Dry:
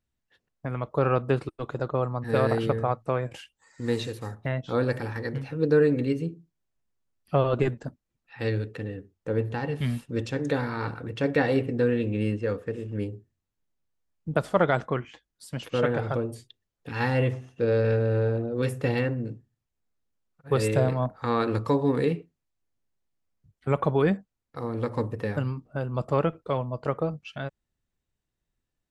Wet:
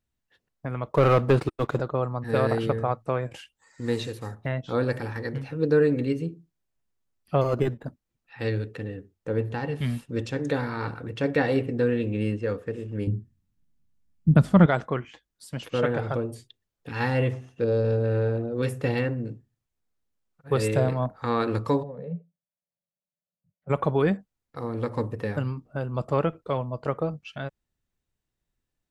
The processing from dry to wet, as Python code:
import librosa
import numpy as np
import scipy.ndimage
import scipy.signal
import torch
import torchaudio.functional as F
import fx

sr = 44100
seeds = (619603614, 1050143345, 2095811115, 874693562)

y = fx.leveller(x, sr, passes=2, at=(0.92, 1.81))
y = fx.resample_linear(y, sr, factor=8, at=(7.41, 7.86))
y = fx.low_shelf_res(y, sr, hz=310.0, db=11.5, q=1.5, at=(13.07, 14.66))
y = fx.peak_eq(y, sr, hz=2000.0, db=-13.5, octaves=1.0, at=(17.64, 18.04))
y = fx.double_bandpass(y, sr, hz=320.0, octaves=1.7, at=(21.82, 23.69), fade=0.02)